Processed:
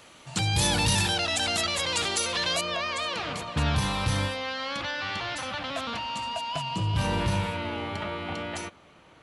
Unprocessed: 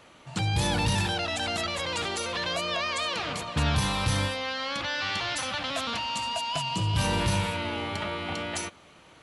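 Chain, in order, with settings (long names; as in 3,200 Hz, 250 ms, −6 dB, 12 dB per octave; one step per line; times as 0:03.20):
high-shelf EQ 3,600 Hz +9.5 dB, from 0:02.61 −3 dB, from 0:04.91 −8 dB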